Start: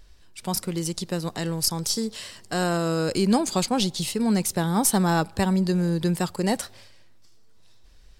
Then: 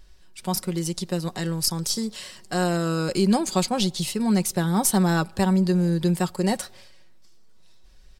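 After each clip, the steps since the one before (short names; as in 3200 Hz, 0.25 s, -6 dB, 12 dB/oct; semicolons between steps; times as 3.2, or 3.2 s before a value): comb 5.4 ms, depth 43%; gain -1 dB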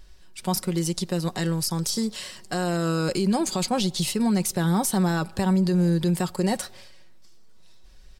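limiter -17.5 dBFS, peak gain reduction 9 dB; gain +2 dB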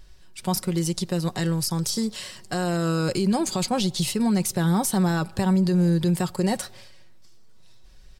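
bell 120 Hz +8 dB 0.42 oct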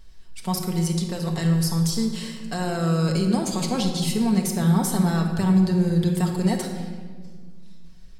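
shoebox room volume 1900 m³, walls mixed, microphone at 1.6 m; gain -3 dB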